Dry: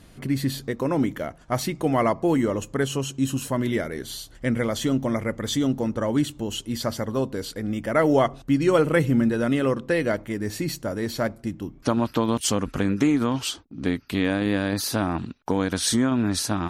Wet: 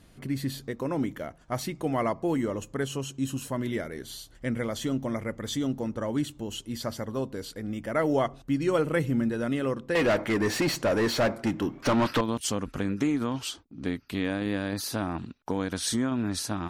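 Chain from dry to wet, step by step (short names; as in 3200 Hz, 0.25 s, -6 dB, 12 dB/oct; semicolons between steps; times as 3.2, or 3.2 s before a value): 9.95–12.21 overdrive pedal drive 28 dB, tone 2400 Hz, clips at -9.5 dBFS; gain -6 dB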